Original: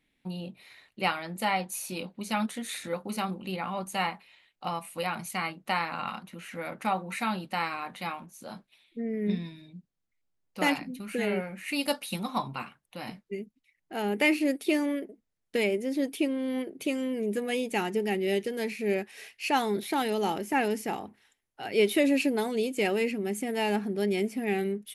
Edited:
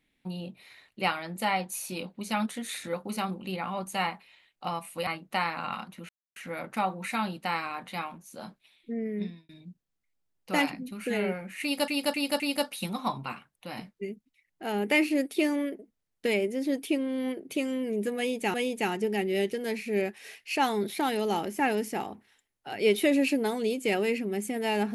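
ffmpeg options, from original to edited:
ffmpeg -i in.wav -filter_complex "[0:a]asplit=8[link_01][link_02][link_03][link_04][link_05][link_06][link_07][link_08];[link_01]atrim=end=5.072[link_09];[link_02]atrim=start=5.418:end=6.44,asetpts=PTS-STARTPTS,afade=type=out:start_time=1.018:duration=0.004:curve=hsin,apad=pad_dur=0.27[link_10];[link_03]atrim=start=6.44:end=9.57,asetpts=PTS-STARTPTS,afade=type=in:duration=0.004:curve=hsin,afade=type=out:start_time=2.66:duration=0.47[link_11];[link_04]atrim=start=9.57:end=11.962,asetpts=PTS-STARTPTS,afade=type=in:duration=0.004:curve=hsin[link_12];[link_05]atrim=start=11.698:end=11.962[link_13];[link_06]atrim=start=11.698:end=11.962[link_14];[link_07]atrim=start=11.698:end=17.842[link_15];[link_08]atrim=start=17.468[link_16];[link_10][link_11][link_12]concat=n=3:v=0:a=1[link_17];[link_09][link_17]acrossfade=duration=0.004:curve1=hsin:curve2=hsin[link_18];[link_18][link_13]acrossfade=duration=0.004:curve1=hsin:curve2=hsin[link_19];[link_19][link_14]acrossfade=duration=0.004:curve1=hsin:curve2=hsin[link_20];[link_20][link_15]acrossfade=duration=0.004:curve1=hsin:curve2=hsin[link_21];[link_21][link_16]acrossfade=duration=0.004:curve1=hsin:curve2=hsin" out.wav

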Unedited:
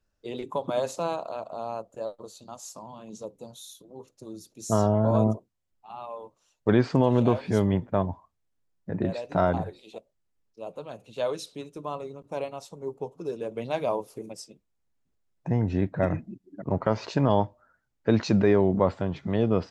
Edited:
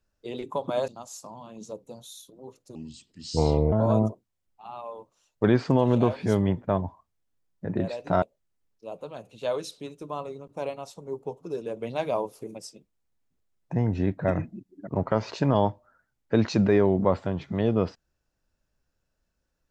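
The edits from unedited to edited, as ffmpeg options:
ffmpeg -i in.wav -filter_complex "[0:a]asplit=5[link_01][link_02][link_03][link_04][link_05];[link_01]atrim=end=0.882[link_06];[link_02]atrim=start=2.398:end=4.274[link_07];[link_03]atrim=start=4.27:end=4.97,asetpts=PTS-STARTPTS,asetrate=31752,aresample=44100[link_08];[link_04]atrim=start=4.966:end=9.472[link_09];[link_05]atrim=start=9.968[link_10];[link_06][link_07]acrossfade=duration=0.004:curve1=hsin:curve2=hsin[link_11];[link_11][link_08]acrossfade=duration=0.004:curve1=hsin:curve2=hsin[link_12];[link_12][link_09]acrossfade=duration=0.004:curve1=hsin:curve2=hsin[link_13];[link_13][link_10]acrossfade=duration=0.004:curve1=hsin:curve2=hsin" out.wav

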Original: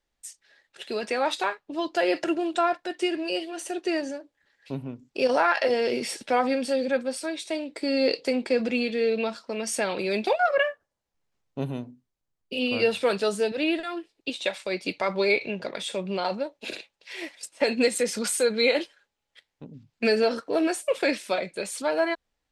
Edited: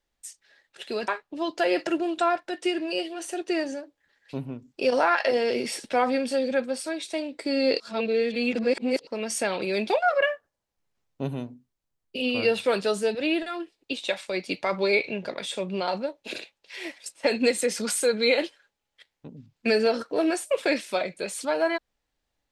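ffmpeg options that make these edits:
ffmpeg -i in.wav -filter_complex "[0:a]asplit=4[link_01][link_02][link_03][link_04];[link_01]atrim=end=1.082[link_05];[link_02]atrim=start=1.448:end=8.172[link_06];[link_03]atrim=start=8.168:end=9.442,asetpts=PTS-STARTPTS,areverse[link_07];[link_04]atrim=start=9.438[link_08];[link_05][link_06]acrossfade=duration=0.004:curve1=hsin:curve2=hsin[link_09];[link_09][link_07]acrossfade=duration=0.004:curve1=hsin:curve2=hsin[link_10];[link_10][link_08]acrossfade=duration=0.004:curve1=hsin:curve2=hsin" out.wav

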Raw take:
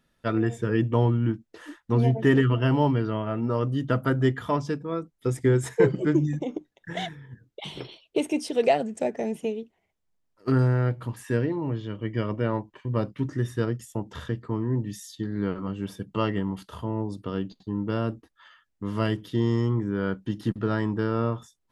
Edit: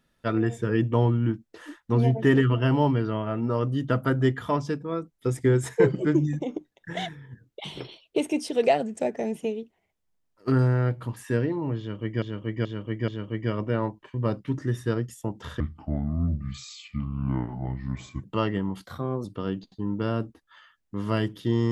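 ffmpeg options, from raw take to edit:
ffmpeg -i in.wav -filter_complex "[0:a]asplit=8[link_01][link_02][link_03][link_04][link_05][link_06][link_07][link_08];[link_01]atrim=end=12.222[link_09];[link_02]atrim=start=11.788:end=12.222[link_10];[link_03]atrim=start=11.788:end=12.222[link_11];[link_04]atrim=start=11.788:end=14.314[link_12];[link_05]atrim=start=14.31:end=16.05,asetpts=PTS-STARTPTS,asetrate=29106,aresample=44100[link_13];[link_06]atrim=start=16.046:end=16.674[link_14];[link_07]atrim=start=16.67:end=17.13,asetpts=PTS-STARTPTS,asetrate=52038,aresample=44100[link_15];[link_08]atrim=start=17.126[link_16];[link_09][link_10]acrossfade=duration=0.004:curve1=hsin:curve2=hsin[link_17];[link_17][link_11]acrossfade=duration=0.004:curve1=hsin:curve2=hsin[link_18];[link_18][link_12]acrossfade=duration=0.004:curve1=hsin:curve2=hsin[link_19];[link_19][link_13]acrossfade=duration=0.004:curve1=hsin:curve2=hsin[link_20];[link_20][link_14]acrossfade=duration=0.004:curve1=hsin:curve2=hsin[link_21];[link_21][link_15]acrossfade=duration=0.004:curve1=hsin:curve2=hsin[link_22];[link_22][link_16]acrossfade=duration=0.004:curve1=hsin:curve2=hsin" out.wav

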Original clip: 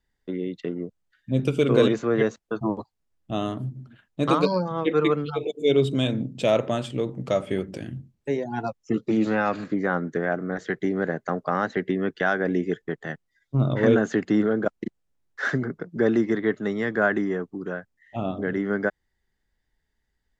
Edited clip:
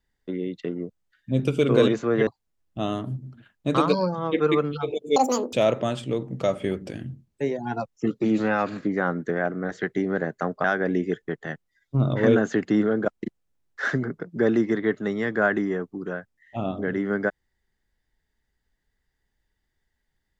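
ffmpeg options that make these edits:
ffmpeg -i in.wav -filter_complex "[0:a]asplit=5[link_01][link_02][link_03][link_04][link_05];[link_01]atrim=end=2.272[link_06];[link_02]atrim=start=2.798:end=5.694[link_07];[link_03]atrim=start=5.69:end=6.4,asetpts=PTS-STARTPTS,asetrate=84231,aresample=44100,atrim=end_sample=16393,asetpts=PTS-STARTPTS[link_08];[link_04]atrim=start=6.396:end=11.512[link_09];[link_05]atrim=start=12.238[link_10];[link_06][link_07]acrossfade=duration=0.004:curve1=hsin:curve2=hsin[link_11];[link_11][link_08]acrossfade=duration=0.004:curve1=hsin:curve2=hsin[link_12];[link_12][link_09]acrossfade=duration=0.004:curve1=hsin:curve2=hsin[link_13];[link_13][link_10]acrossfade=duration=0.004:curve1=hsin:curve2=hsin" out.wav

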